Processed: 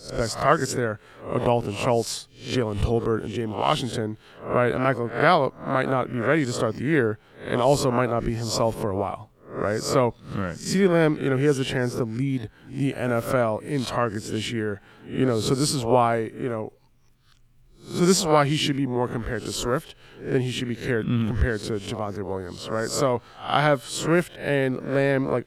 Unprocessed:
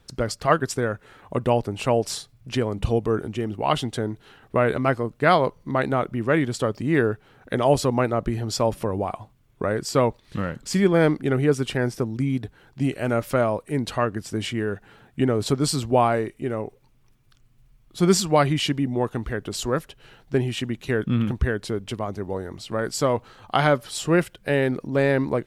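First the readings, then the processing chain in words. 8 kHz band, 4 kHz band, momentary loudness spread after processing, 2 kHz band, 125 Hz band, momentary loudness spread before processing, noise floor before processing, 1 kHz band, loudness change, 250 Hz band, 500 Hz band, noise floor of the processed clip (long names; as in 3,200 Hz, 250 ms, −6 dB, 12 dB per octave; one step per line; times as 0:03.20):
+1.0 dB, +1.0 dB, 10 LU, +0.5 dB, −1.0 dB, 10 LU, −58 dBFS, 0.0 dB, −0.5 dB, −1.0 dB, −0.5 dB, −55 dBFS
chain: peak hold with a rise ahead of every peak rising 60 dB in 0.40 s
level −1.5 dB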